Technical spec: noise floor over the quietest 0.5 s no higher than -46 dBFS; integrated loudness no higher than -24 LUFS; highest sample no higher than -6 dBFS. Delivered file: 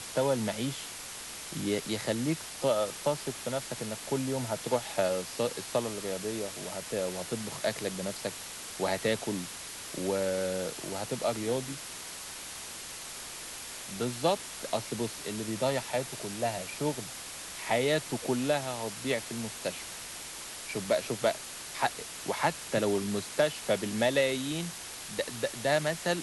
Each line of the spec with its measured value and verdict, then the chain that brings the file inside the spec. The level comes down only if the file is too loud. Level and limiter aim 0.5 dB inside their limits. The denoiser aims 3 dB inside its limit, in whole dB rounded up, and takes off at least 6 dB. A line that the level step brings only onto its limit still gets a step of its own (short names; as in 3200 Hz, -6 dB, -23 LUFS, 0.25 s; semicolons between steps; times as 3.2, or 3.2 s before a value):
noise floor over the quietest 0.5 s -42 dBFS: fail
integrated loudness -32.5 LUFS: OK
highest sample -13.5 dBFS: OK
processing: denoiser 7 dB, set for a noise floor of -42 dBFS